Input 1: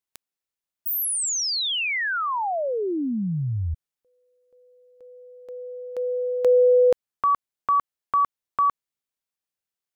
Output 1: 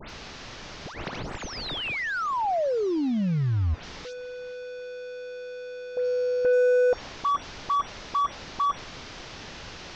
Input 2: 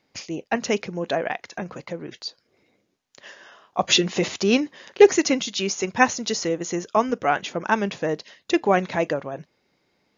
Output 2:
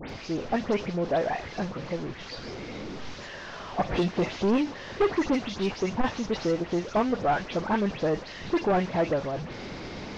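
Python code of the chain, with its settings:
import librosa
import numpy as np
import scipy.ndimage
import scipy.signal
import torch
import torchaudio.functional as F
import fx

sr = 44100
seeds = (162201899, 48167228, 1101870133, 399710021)

y = fx.delta_mod(x, sr, bps=32000, step_db=-30.0)
y = fx.tilt_eq(y, sr, slope=-2.0)
y = fx.dispersion(y, sr, late='highs', ms=103.0, hz=3000.0)
y = 10.0 ** (-16.5 / 20.0) * np.tanh(y / 10.0 ** (-16.5 / 20.0))
y = fx.dynamic_eq(y, sr, hz=710.0, q=1.2, threshold_db=-35.0, ratio=4.0, max_db=3)
y = y * librosa.db_to_amplitude(-3.0)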